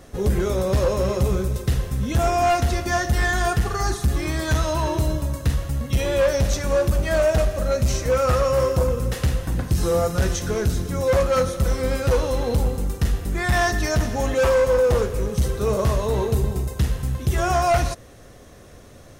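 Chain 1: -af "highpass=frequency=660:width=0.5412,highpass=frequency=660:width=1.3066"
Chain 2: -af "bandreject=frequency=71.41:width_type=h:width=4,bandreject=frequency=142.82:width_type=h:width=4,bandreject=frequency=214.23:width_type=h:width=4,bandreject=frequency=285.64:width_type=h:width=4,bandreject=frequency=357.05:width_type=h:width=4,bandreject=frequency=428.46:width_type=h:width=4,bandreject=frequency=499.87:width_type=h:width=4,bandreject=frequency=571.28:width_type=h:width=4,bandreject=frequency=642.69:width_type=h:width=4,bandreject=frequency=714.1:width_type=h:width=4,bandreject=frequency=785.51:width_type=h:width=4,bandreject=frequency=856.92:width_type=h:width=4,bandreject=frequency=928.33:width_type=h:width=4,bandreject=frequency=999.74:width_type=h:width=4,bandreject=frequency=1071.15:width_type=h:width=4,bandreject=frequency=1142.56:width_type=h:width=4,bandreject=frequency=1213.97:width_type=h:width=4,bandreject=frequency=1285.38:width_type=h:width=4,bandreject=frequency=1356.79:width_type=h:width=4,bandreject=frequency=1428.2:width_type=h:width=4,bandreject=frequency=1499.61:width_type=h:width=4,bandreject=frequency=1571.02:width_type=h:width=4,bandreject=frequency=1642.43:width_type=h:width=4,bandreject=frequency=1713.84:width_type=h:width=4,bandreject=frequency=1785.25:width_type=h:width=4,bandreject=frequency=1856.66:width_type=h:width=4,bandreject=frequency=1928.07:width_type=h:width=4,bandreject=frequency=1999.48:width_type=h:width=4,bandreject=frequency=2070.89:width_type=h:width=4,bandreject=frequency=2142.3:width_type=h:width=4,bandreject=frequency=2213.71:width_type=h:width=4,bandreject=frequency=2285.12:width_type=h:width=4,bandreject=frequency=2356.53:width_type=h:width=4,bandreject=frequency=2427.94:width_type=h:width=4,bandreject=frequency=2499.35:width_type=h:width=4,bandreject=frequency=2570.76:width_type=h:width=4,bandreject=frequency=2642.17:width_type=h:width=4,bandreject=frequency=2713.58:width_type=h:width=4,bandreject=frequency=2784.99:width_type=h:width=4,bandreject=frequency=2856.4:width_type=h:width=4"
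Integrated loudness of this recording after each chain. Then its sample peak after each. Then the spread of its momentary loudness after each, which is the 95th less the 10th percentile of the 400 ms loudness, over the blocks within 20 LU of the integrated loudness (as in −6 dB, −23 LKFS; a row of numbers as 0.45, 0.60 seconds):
−28.0, −22.5 LKFS; −11.0, −10.5 dBFS; 13, 6 LU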